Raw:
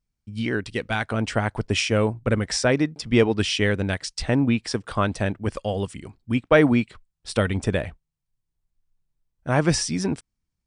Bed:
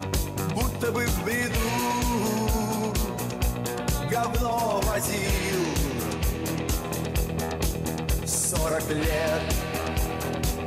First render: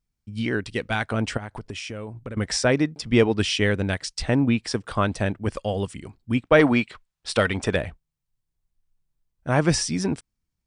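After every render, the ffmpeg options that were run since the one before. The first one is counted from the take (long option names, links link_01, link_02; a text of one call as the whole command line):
ffmpeg -i in.wav -filter_complex "[0:a]asettb=1/sr,asplit=3[link_01][link_02][link_03];[link_01]atrim=end=1.374[link_04];[link_02]atrim=start=1.37:end=2.37,asetpts=PTS-STARTPTS,afade=type=in:duration=0.004:curve=qsin,afade=type=out:start_time=0.996:duration=0.004:curve=qsin,acompressor=threshold=-30dB:ratio=10:attack=3.2:release=140:knee=1:detection=peak[link_05];[link_03]atrim=start=2.366[link_06];[link_04][link_05]acrossfade=duration=0.004:curve1=hsin:curve2=qsin[link_07];[link_07][link_06]acrossfade=duration=0.004:curve1=qsin:curve2=hsin,asettb=1/sr,asplit=3[link_08][link_09][link_10];[link_08]atrim=end=6.594[link_11];[link_09]atrim=start=6.59:end=7.76,asetpts=PTS-STARTPTS,afade=type=in:duration=0.004:curve=qsin,afade=type=out:start_time=1.166:duration=0.004:curve=qsin,asplit=2[link_12][link_13];[link_13]highpass=frequency=720:poles=1,volume=11dB,asoftclip=type=tanh:threshold=-5.5dB[link_14];[link_12][link_14]amix=inputs=2:normalize=0,lowpass=frequency=4700:poles=1,volume=-6dB[link_15];[link_10]atrim=start=7.756[link_16];[link_11][link_15]acrossfade=duration=0.004:curve1=hsin:curve2=qsin[link_17];[link_17][link_16]acrossfade=duration=0.004:curve1=qsin:curve2=hsin" out.wav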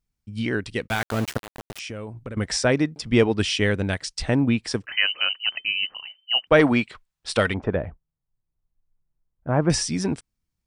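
ffmpeg -i in.wav -filter_complex "[0:a]asplit=3[link_01][link_02][link_03];[link_01]afade=type=out:start_time=0.86:duration=0.02[link_04];[link_02]aeval=exprs='val(0)*gte(abs(val(0)),0.0398)':channel_layout=same,afade=type=in:start_time=0.86:duration=0.02,afade=type=out:start_time=1.78:duration=0.02[link_05];[link_03]afade=type=in:start_time=1.78:duration=0.02[link_06];[link_04][link_05][link_06]amix=inputs=3:normalize=0,asettb=1/sr,asplit=3[link_07][link_08][link_09];[link_07]atrim=end=4.864[link_10];[link_08]atrim=start=4.86:end=6.47,asetpts=PTS-STARTPTS,afade=type=in:duration=0.004:curve=qsin,afade=type=out:start_time=1.606:duration=0.004:curve=qsin,lowpass=frequency=2600:width_type=q:width=0.5098,lowpass=frequency=2600:width_type=q:width=0.6013,lowpass=frequency=2600:width_type=q:width=0.9,lowpass=frequency=2600:width_type=q:width=2.563,afreqshift=-3100[link_11];[link_09]atrim=start=6.466[link_12];[link_10][link_11]acrossfade=duration=0.004:curve1=hsin:curve2=qsin[link_13];[link_13][link_12]acrossfade=duration=0.004:curve1=qsin:curve2=hsin,asettb=1/sr,asplit=3[link_14][link_15][link_16];[link_14]atrim=end=7.544[link_17];[link_15]atrim=start=7.54:end=9.7,asetpts=PTS-STARTPTS,afade=type=in:duration=0.004:curve=qsin,afade=type=out:start_time=2.156:duration=0.004:curve=qsin,lowpass=1200[link_18];[link_16]atrim=start=9.696[link_19];[link_17][link_18]acrossfade=duration=0.004:curve1=hsin:curve2=qsin[link_20];[link_20][link_19]acrossfade=duration=0.004:curve1=qsin:curve2=hsin" out.wav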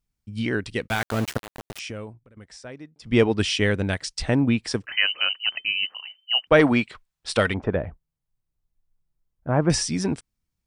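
ffmpeg -i in.wav -filter_complex "[0:a]asettb=1/sr,asplit=3[link_01][link_02][link_03];[link_01]atrim=end=5.864[link_04];[link_02]atrim=start=5.86:end=6.47,asetpts=PTS-STARTPTS,afade=type=in:duration=0.004:curve=qsin,afade=type=out:start_time=0.606:duration=0.004:curve=qsin,highpass=frequency=580:poles=1[link_05];[link_03]atrim=start=6.466[link_06];[link_04][link_05]acrossfade=duration=0.004:curve1=hsin:curve2=qsin[link_07];[link_07][link_06]acrossfade=duration=0.004:curve1=qsin:curve2=hsin,asplit=3[link_08][link_09][link_10];[link_08]atrim=end=2.19,asetpts=PTS-STARTPTS,afade=type=out:start_time=1.95:duration=0.24:curve=qsin:silence=0.105925[link_11];[link_09]atrim=start=2.19:end=2.99,asetpts=PTS-STARTPTS,volume=-19.5dB[link_12];[link_10]atrim=start=2.99,asetpts=PTS-STARTPTS,afade=type=in:duration=0.24:curve=qsin:silence=0.105925[link_13];[link_11][link_12][link_13]concat=n=3:v=0:a=1" out.wav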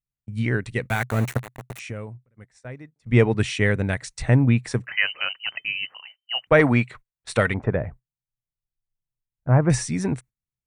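ffmpeg -i in.wav -af "agate=range=-15dB:threshold=-43dB:ratio=16:detection=peak,equalizer=frequency=125:width_type=o:width=0.33:gain=11,equalizer=frequency=315:width_type=o:width=0.33:gain=-3,equalizer=frequency=2000:width_type=o:width=0.33:gain=4,equalizer=frequency=3150:width_type=o:width=0.33:gain=-8,equalizer=frequency=5000:width_type=o:width=0.33:gain=-12" out.wav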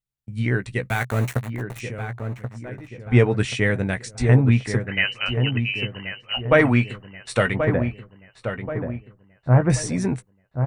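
ffmpeg -i in.wav -filter_complex "[0:a]asplit=2[link_01][link_02];[link_02]adelay=16,volume=-10dB[link_03];[link_01][link_03]amix=inputs=2:normalize=0,asplit=2[link_04][link_05];[link_05]adelay=1081,lowpass=frequency=1500:poles=1,volume=-7dB,asplit=2[link_06][link_07];[link_07]adelay=1081,lowpass=frequency=1500:poles=1,volume=0.5,asplit=2[link_08][link_09];[link_09]adelay=1081,lowpass=frequency=1500:poles=1,volume=0.5,asplit=2[link_10][link_11];[link_11]adelay=1081,lowpass=frequency=1500:poles=1,volume=0.5,asplit=2[link_12][link_13];[link_13]adelay=1081,lowpass=frequency=1500:poles=1,volume=0.5,asplit=2[link_14][link_15];[link_15]adelay=1081,lowpass=frequency=1500:poles=1,volume=0.5[link_16];[link_04][link_06][link_08][link_10][link_12][link_14][link_16]amix=inputs=7:normalize=0" out.wav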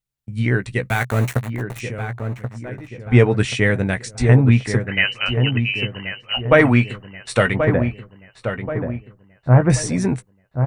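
ffmpeg -i in.wav -af "volume=3.5dB,alimiter=limit=-1dB:level=0:latency=1" out.wav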